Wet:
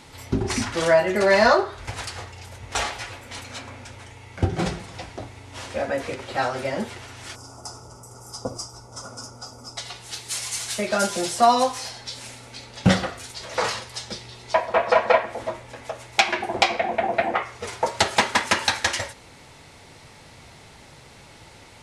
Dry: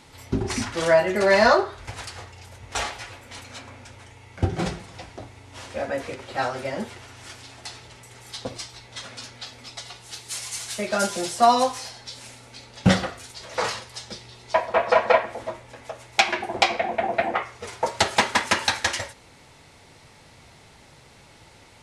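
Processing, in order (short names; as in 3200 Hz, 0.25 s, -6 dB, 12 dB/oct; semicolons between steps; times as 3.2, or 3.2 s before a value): spectral gain 7.35–9.77, 1500–4700 Hz -22 dB; in parallel at -3 dB: compressor, threshold -28 dBFS, peak gain reduction 15.5 dB; on the sum: gain -1 dB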